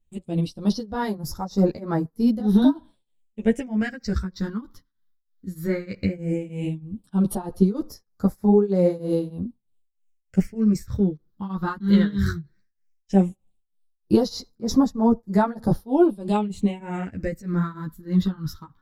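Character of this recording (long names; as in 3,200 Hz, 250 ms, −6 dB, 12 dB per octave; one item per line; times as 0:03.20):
phaser sweep stages 6, 0.15 Hz, lowest notch 650–2,800 Hz
tremolo triangle 3.2 Hz, depth 95%
a shimmering, thickened sound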